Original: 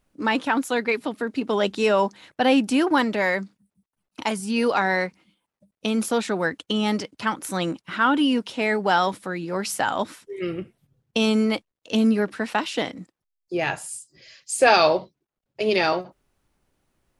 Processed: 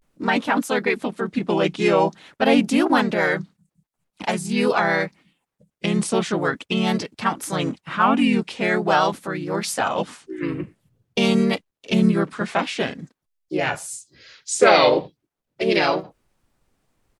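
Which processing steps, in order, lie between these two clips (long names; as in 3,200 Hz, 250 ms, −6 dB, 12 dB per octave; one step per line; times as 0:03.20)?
pitch-shifted copies added −7 semitones −15 dB, −3 semitones 0 dB
pitch vibrato 0.46 Hz 88 cents
level −1 dB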